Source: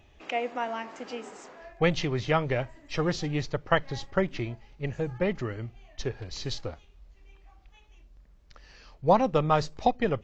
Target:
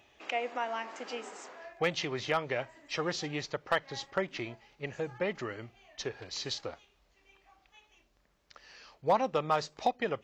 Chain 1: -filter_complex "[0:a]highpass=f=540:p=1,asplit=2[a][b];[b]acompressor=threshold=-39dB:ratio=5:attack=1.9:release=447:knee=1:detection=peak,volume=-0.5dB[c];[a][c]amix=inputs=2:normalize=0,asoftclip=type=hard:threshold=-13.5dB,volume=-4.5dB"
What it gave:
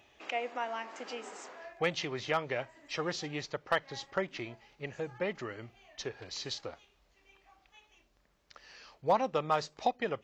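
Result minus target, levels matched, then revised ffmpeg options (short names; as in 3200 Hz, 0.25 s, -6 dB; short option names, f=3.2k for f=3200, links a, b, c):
compressor: peak gain reduction +7 dB
-filter_complex "[0:a]highpass=f=540:p=1,asplit=2[a][b];[b]acompressor=threshold=-30.5dB:ratio=5:attack=1.9:release=447:knee=1:detection=peak,volume=-0.5dB[c];[a][c]amix=inputs=2:normalize=0,asoftclip=type=hard:threshold=-13.5dB,volume=-4.5dB"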